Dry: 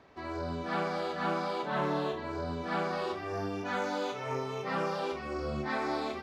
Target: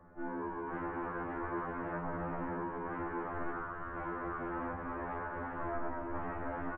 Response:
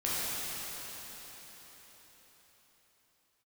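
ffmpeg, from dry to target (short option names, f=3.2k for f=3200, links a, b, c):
-af "dynaudnorm=f=490:g=3:m=12dB,alimiter=level_in=1.5dB:limit=-24dB:level=0:latency=1:release=11,volume=-1.5dB,aeval=exprs='0.0211*(abs(mod(val(0)/0.0211+3,4)-2)-1)':c=same,aecho=1:1:359:0.398,highpass=f=350:t=q:w=0.5412,highpass=f=350:t=q:w=1.307,lowpass=f=2.1k:t=q:w=0.5176,lowpass=f=2.1k:t=q:w=0.7071,lowpass=f=2.1k:t=q:w=1.932,afreqshift=-370,asetrate=40517,aresample=44100,afftfilt=real='re*2*eq(mod(b,4),0)':imag='im*2*eq(mod(b,4),0)':win_size=2048:overlap=0.75,volume=4dB"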